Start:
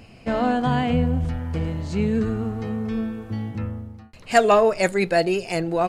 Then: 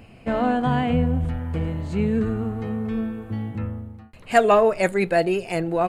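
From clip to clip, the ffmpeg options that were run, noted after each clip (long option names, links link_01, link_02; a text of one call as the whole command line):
ffmpeg -i in.wav -af "equalizer=frequency=5400:width=1.5:gain=-10.5" out.wav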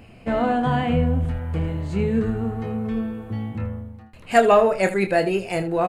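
ffmpeg -i in.wav -af "aecho=1:1:26|78:0.422|0.2" out.wav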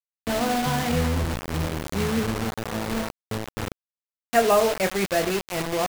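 ffmpeg -i in.wav -af "acrusher=bits=3:mix=0:aa=0.000001,volume=-4dB" out.wav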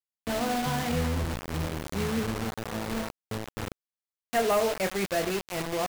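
ffmpeg -i in.wav -af "asoftclip=type=hard:threshold=-15.5dB,volume=-4.5dB" out.wav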